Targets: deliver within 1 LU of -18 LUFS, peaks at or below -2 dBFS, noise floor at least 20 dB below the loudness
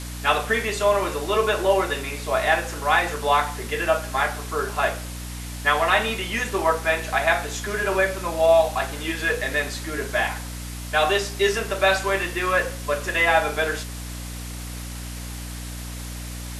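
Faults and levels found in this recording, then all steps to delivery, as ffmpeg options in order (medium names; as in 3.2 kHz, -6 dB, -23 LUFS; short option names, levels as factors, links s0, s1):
hum 60 Hz; highest harmonic 300 Hz; hum level -32 dBFS; noise floor -34 dBFS; noise floor target -43 dBFS; loudness -22.5 LUFS; peak level -5.0 dBFS; loudness target -18.0 LUFS
-> -af "bandreject=f=60:t=h:w=6,bandreject=f=120:t=h:w=6,bandreject=f=180:t=h:w=6,bandreject=f=240:t=h:w=6,bandreject=f=300:t=h:w=6"
-af "afftdn=nr=9:nf=-34"
-af "volume=1.68,alimiter=limit=0.794:level=0:latency=1"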